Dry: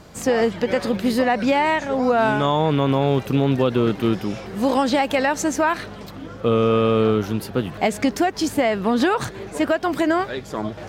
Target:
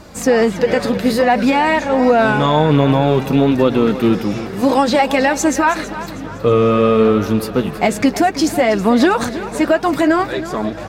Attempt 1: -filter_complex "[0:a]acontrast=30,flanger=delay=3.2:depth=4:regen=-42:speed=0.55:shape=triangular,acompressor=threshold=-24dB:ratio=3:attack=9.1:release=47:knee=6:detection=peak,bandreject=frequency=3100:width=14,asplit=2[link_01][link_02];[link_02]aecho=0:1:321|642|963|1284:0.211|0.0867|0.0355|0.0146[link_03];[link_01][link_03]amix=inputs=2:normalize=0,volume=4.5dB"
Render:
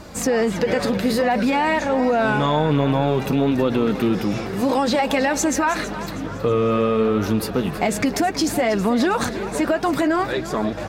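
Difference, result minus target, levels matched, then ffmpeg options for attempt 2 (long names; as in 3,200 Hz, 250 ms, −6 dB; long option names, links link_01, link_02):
downward compressor: peak gain reduction +8.5 dB
-filter_complex "[0:a]acontrast=30,flanger=delay=3.2:depth=4:regen=-42:speed=0.55:shape=triangular,bandreject=frequency=3100:width=14,asplit=2[link_01][link_02];[link_02]aecho=0:1:321|642|963|1284:0.211|0.0867|0.0355|0.0146[link_03];[link_01][link_03]amix=inputs=2:normalize=0,volume=4.5dB"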